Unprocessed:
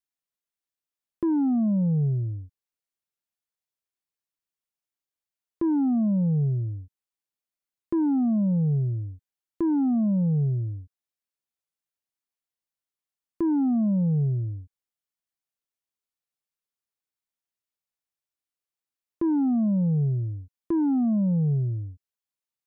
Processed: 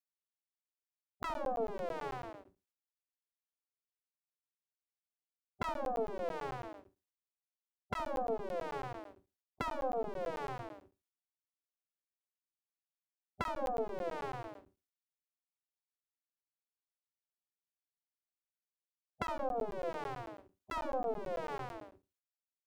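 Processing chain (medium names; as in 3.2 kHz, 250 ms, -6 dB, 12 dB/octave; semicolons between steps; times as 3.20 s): comb filter that takes the minimum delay 4.1 ms; gate -39 dBFS, range -7 dB; flutter echo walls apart 11.9 m, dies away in 0.25 s; spectral gate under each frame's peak -15 dB weak; crackling interface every 0.11 s, samples 512, zero, from 0.79 s; trim +4.5 dB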